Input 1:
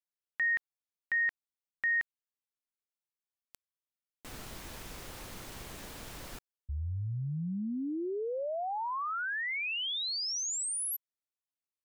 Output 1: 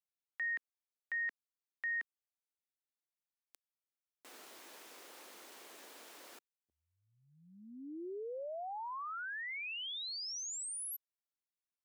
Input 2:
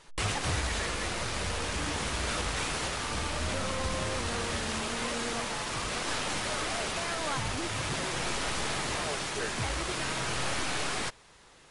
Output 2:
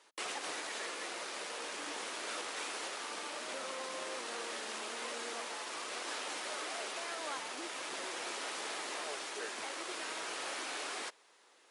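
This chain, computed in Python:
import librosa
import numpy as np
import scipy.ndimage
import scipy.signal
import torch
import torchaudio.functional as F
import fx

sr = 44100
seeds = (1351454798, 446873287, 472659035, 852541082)

y = scipy.signal.sosfilt(scipy.signal.butter(4, 310.0, 'highpass', fs=sr, output='sos'), x)
y = y * librosa.db_to_amplitude(-7.5)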